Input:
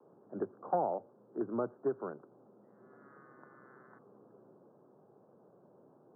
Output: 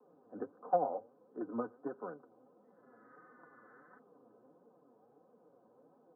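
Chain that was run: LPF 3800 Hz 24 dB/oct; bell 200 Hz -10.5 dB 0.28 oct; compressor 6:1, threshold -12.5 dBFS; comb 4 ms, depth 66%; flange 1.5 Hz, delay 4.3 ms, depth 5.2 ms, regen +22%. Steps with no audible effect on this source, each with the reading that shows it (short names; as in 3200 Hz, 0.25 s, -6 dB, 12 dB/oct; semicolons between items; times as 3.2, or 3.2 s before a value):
LPF 3800 Hz: input band ends at 1500 Hz; compressor, threshold -12.5 dBFS: input peak -20.0 dBFS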